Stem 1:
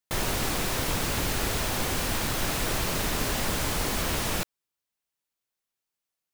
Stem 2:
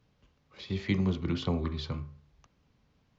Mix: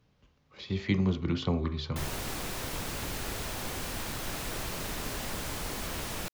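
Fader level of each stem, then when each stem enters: -8.0 dB, +1.0 dB; 1.85 s, 0.00 s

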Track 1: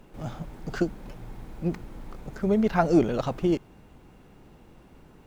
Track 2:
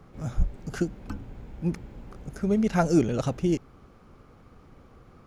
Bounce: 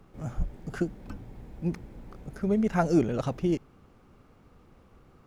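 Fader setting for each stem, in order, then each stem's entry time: -10.0 dB, -6.0 dB; 0.00 s, 0.00 s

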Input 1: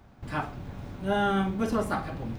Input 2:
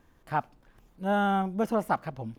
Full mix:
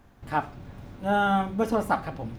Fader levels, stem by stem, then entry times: -3.5 dB, +1.5 dB; 0.00 s, 0.00 s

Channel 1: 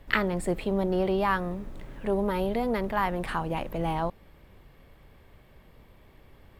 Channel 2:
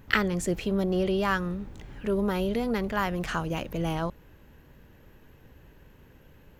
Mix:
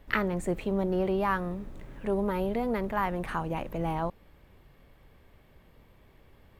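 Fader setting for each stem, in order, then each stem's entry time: -3.5 dB, -15.0 dB; 0.00 s, 0.00 s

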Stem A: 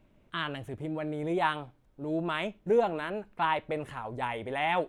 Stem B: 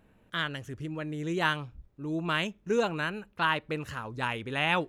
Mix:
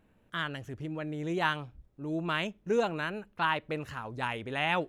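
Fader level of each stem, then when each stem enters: -10.5 dB, -4.5 dB; 0.00 s, 0.00 s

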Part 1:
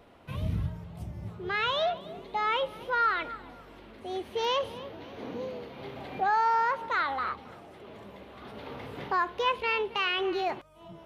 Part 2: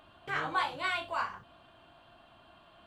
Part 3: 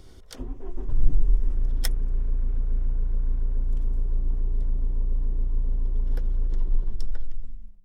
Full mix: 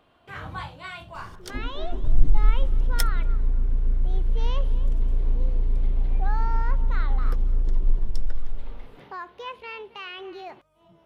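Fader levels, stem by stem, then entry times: -9.0 dB, -5.5 dB, +2.5 dB; 0.00 s, 0.00 s, 1.15 s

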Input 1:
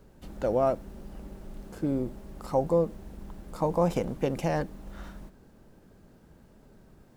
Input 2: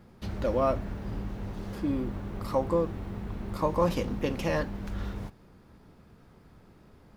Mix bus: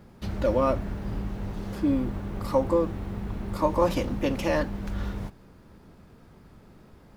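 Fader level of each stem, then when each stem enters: -4.0 dB, +2.5 dB; 0.00 s, 0.00 s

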